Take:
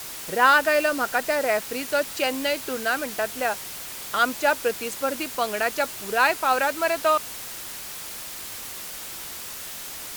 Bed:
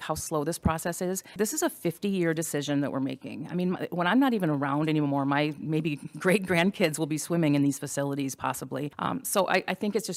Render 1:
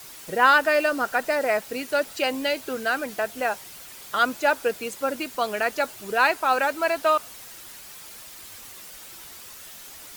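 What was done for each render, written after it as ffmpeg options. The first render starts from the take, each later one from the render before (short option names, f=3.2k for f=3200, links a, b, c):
-af "afftdn=nr=8:nf=-37"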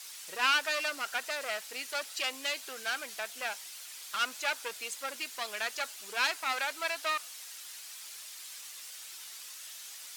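-af "aeval=exprs='clip(val(0),-1,0.0422)':c=same,bandpass=f=5.5k:t=q:w=0.51:csg=0"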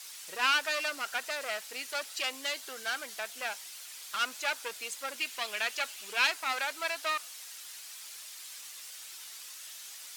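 -filter_complex "[0:a]asettb=1/sr,asplit=3[a][b][c];[a]atrim=end=2.404[d];[b]atrim=start=2.4:end=3.17,asetpts=PTS-STARTPTS,afade=t=in:d=0.004:c=qsin,afade=t=out:st=0.766:d=0.004:c=qsin,bandreject=f=2.5k:w=12[e];[c]atrim=start=3.166[f];[d][e]acrossfade=d=0.004:c1=hsin:c2=qsin[g];[g][f]acrossfade=d=0.004:c1=qsin:c2=hsin,asettb=1/sr,asplit=3[h][i][j];[h]atrim=end=5.184[k];[i]atrim=start=5.18:end=6.3,asetpts=PTS-STARTPTS,afade=t=in:d=0.004:c=qsin,afade=t=out:st=1.116:d=0.004:c=qsin,equalizer=f=2.7k:t=o:w=0.77:g=5.5[l];[j]atrim=start=6.296[m];[k][l]acrossfade=d=0.004:c1=hsin:c2=qsin[n];[n][m]acrossfade=d=0.004:c1=qsin:c2=hsin"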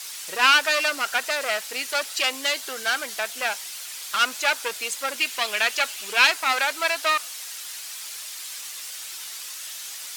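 -af "volume=10dB,alimiter=limit=-3dB:level=0:latency=1"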